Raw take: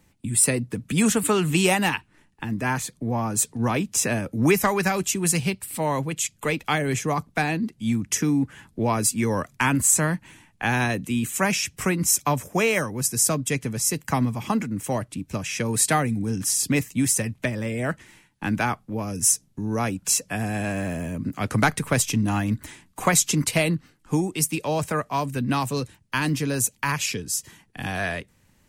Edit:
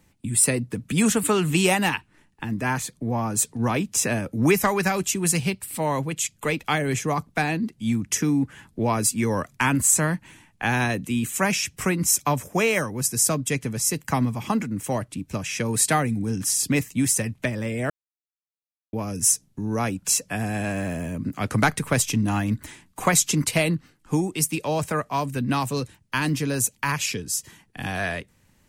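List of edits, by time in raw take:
17.9–18.93 mute

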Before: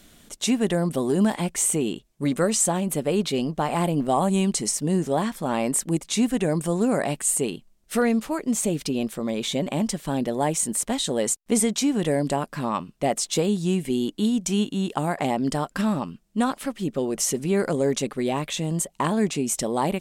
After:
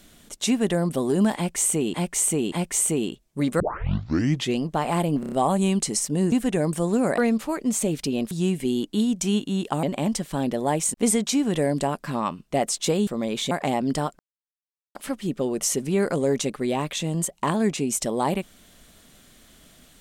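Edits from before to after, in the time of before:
1.36–1.94 loop, 3 plays
2.44 tape start 0.98 s
4.04 stutter 0.03 s, 5 plays
5.04–6.2 cut
7.06–8 cut
9.13–9.57 swap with 13.56–15.08
10.68–11.43 cut
15.76–16.52 mute

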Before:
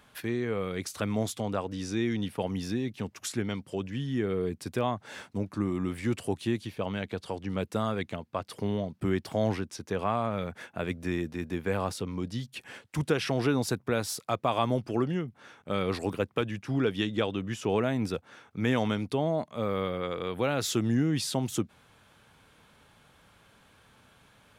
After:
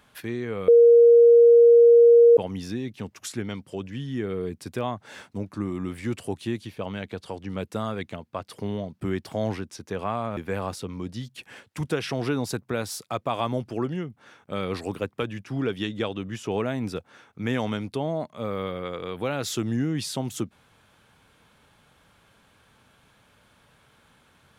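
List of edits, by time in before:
0.68–2.37 bleep 470 Hz -10 dBFS
10.37–11.55 cut

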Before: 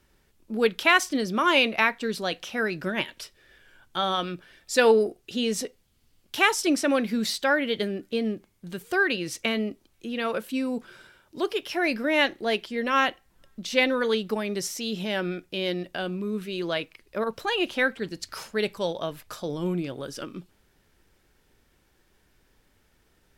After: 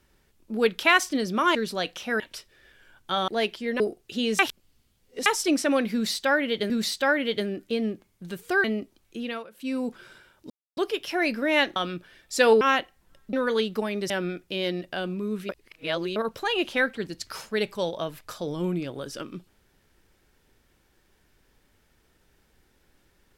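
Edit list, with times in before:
1.55–2.02 cut
2.67–3.06 cut
4.14–4.99 swap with 12.38–12.9
5.58–6.45 reverse
7.12–7.89 loop, 2 plays
9.06–9.53 cut
10.11–10.65 dip -19 dB, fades 0.25 s
11.39 insert silence 0.27 s
13.62–13.87 cut
14.64–15.12 cut
16.51–17.18 reverse

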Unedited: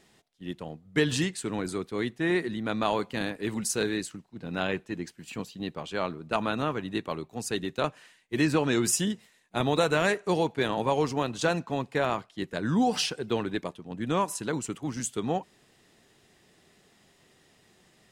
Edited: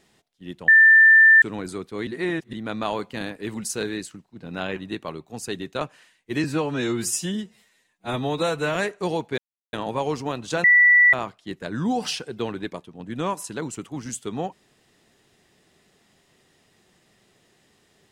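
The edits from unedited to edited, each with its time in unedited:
0.68–1.42 bleep 1780 Hz -9 dBFS
2.07–2.53 reverse
4.76–6.79 cut
8.47–10.01 stretch 1.5×
10.64 insert silence 0.35 s
11.55–12.04 bleep 1960 Hz -11 dBFS

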